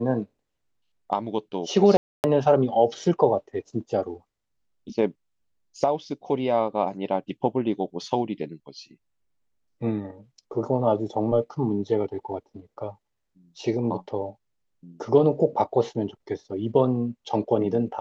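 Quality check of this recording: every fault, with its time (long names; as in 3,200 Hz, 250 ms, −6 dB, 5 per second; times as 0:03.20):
0:01.97–0:02.24: drop-out 269 ms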